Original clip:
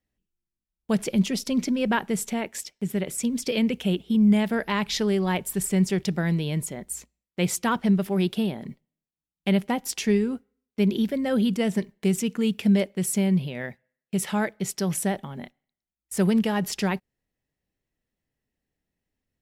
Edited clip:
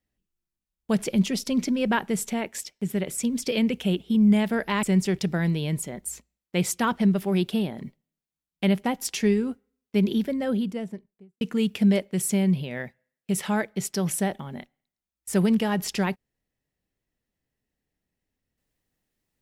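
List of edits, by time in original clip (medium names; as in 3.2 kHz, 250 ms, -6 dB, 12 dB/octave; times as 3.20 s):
4.83–5.67 s: delete
10.91–12.25 s: studio fade out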